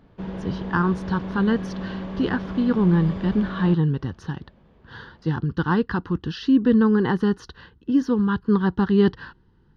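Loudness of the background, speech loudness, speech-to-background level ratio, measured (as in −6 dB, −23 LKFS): −32.5 LKFS, −22.0 LKFS, 10.5 dB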